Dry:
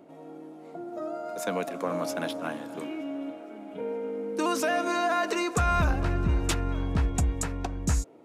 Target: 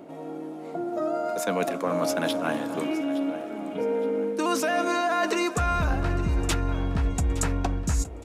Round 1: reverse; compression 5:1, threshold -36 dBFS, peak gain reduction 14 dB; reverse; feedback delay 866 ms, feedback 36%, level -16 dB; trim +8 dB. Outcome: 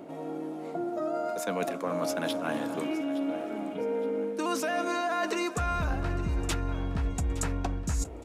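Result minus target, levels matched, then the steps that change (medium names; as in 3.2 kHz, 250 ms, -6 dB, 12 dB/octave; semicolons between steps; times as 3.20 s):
compression: peak gain reduction +5 dB
change: compression 5:1, threshold -30 dBFS, peak gain reduction 9.5 dB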